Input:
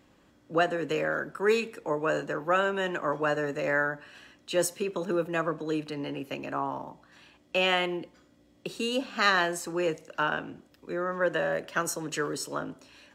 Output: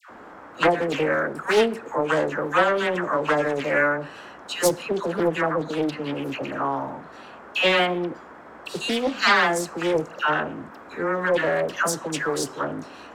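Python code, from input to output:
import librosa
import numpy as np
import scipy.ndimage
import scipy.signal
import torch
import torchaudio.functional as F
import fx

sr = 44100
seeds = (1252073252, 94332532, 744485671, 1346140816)

y = fx.dmg_noise_band(x, sr, seeds[0], low_hz=200.0, high_hz=1500.0, level_db=-50.0)
y = fx.dispersion(y, sr, late='lows', ms=102.0, hz=1100.0)
y = fx.doppler_dist(y, sr, depth_ms=0.36)
y = y * 10.0 ** (6.0 / 20.0)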